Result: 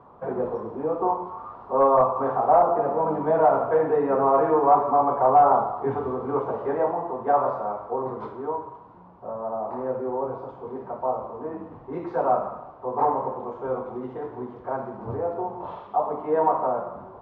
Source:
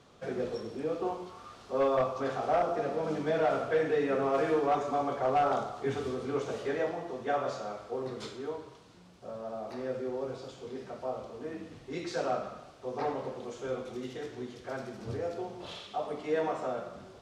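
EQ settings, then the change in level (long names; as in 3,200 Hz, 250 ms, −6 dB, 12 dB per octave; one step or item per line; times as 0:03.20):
low-pass with resonance 970 Hz, resonance Q 4.9
+4.5 dB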